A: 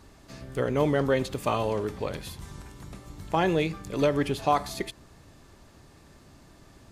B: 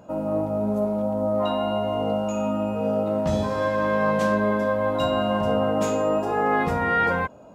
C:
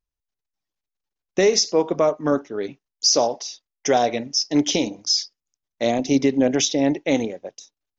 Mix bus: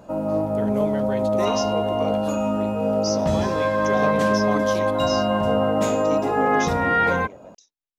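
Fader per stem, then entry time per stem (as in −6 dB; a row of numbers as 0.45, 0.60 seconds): −7.0, +2.0, −12.5 decibels; 0.00, 0.00, 0.00 seconds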